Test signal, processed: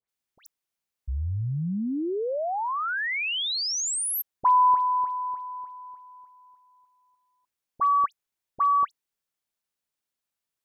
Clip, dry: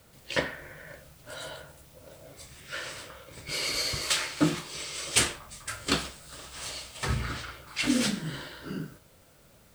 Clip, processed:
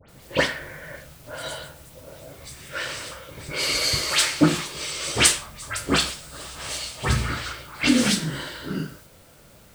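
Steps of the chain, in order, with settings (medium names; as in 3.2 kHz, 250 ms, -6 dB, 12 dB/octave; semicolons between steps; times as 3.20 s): phase dispersion highs, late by 89 ms, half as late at 2.3 kHz; trim +7 dB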